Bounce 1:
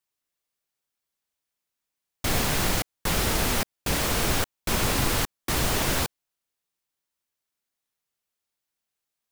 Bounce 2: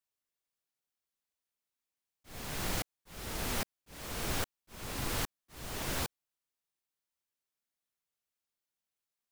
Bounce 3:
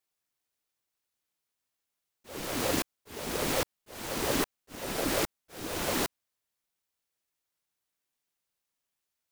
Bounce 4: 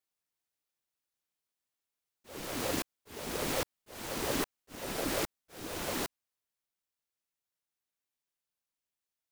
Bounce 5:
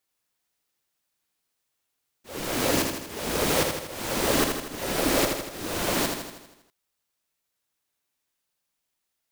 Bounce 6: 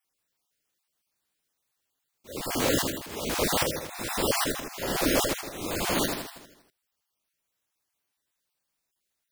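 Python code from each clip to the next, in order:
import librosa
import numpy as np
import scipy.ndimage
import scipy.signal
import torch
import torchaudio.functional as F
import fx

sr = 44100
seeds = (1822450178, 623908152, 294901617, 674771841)

y1 = fx.auto_swell(x, sr, attack_ms=653.0)
y1 = y1 * 10.0 ** (-7.0 / 20.0)
y2 = fx.ring_lfo(y1, sr, carrier_hz=400.0, swing_pct=40, hz=5.6)
y2 = y2 * 10.0 ** (8.0 / 20.0)
y3 = fx.rider(y2, sr, range_db=10, speed_s=2.0)
y3 = y3 * 10.0 ** (-4.5 / 20.0)
y4 = fx.echo_feedback(y3, sr, ms=80, feedback_pct=57, wet_db=-5.0)
y4 = y4 * 10.0 ** (8.5 / 20.0)
y5 = fx.spec_dropout(y4, sr, seeds[0], share_pct=25)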